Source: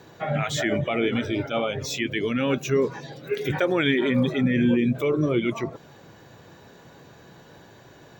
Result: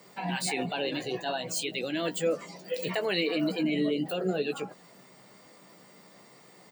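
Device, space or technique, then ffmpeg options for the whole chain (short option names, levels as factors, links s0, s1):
nightcore: -filter_complex "[0:a]highpass=f=120:w=0.5412,highpass=f=120:w=1.3066,aemphasis=mode=production:type=50kf,asetrate=53802,aresample=44100,asplit=2[s0][s1];[s1]adelay=16,volume=0.398[s2];[s0][s2]amix=inputs=2:normalize=0,volume=0.422"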